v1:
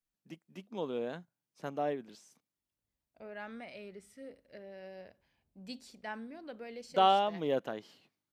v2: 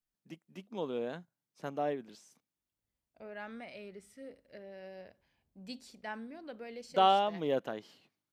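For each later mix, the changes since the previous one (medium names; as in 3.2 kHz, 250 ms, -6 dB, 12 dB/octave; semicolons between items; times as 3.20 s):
no change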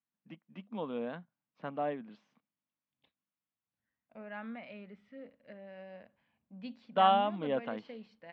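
second voice: entry +0.95 s; master: add cabinet simulation 120–3200 Hz, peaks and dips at 220 Hz +6 dB, 380 Hz -9 dB, 1.1 kHz +4 dB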